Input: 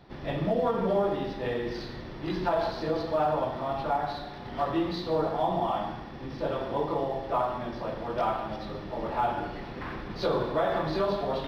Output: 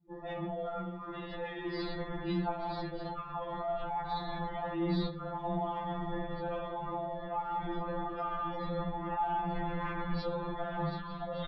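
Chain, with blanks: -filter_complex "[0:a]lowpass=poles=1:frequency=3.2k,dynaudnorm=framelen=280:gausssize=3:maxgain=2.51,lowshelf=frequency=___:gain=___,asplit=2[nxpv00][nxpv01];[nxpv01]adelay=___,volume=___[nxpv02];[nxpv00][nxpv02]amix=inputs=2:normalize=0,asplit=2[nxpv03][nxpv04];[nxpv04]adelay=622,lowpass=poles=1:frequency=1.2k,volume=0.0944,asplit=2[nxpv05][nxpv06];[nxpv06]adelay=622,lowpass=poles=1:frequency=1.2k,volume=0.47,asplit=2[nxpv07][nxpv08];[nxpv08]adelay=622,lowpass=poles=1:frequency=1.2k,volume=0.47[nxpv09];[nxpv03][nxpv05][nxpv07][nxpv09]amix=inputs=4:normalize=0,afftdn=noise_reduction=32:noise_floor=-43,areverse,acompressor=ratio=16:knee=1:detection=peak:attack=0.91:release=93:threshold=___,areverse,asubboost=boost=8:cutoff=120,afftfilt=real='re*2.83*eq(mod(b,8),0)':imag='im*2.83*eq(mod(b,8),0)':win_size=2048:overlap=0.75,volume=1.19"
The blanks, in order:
240, -6.5, 15, 0.266, 0.0316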